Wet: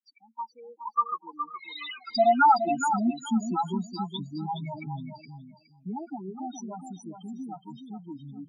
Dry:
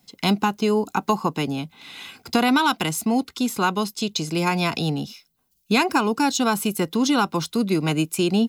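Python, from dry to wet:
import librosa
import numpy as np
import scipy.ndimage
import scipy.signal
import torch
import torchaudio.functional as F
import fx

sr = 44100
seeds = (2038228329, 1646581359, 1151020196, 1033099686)

p1 = fx.spec_expand(x, sr, power=2.3)
p2 = fx.doppler_pass(p1, sr, speed_mps=37, closest_m=19.0, pass_at_s=1.95)
p3 = scipy.signal.sosfilt(scipy.signal.butter(2, 6800.0, 'lowpass', fs=sr, output='sos'), p2)
p4 = fx.peak_eq(p3, sr, hz=120.0, db=-8.0, octaves=2.7)
p5 = np.sign(p4) * np.maximum(np.abs(p4) - 10.0 ** (-54.5 / 20.0), 0.0)
p6 = p4 + F.gain(torch.from_numpy(p5), -4.5).numpy()
p7 = fx.spec_topn(p6, sr, count=4)
p8 = fx.filter_sweep_highpass(p7, sr, from_hz=1500.0, to_hz=98.0, start_s=0.97, end_s=4.38, q=1.9)
p9 = p8 + fx.echo_feedback(p8, sr, ms=417, feedback_pct=19, wet_db=-8.0, dry=0)
y = F.gain(torch.from_numpy(p9), 2.5).numpy()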